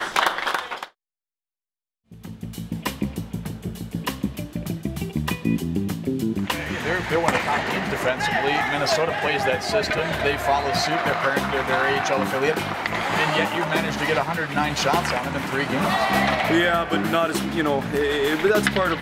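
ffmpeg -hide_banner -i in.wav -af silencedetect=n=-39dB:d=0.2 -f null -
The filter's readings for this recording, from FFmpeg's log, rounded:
silence_start: 0.88
silence_end: 2.12 | silence_duration: 1.23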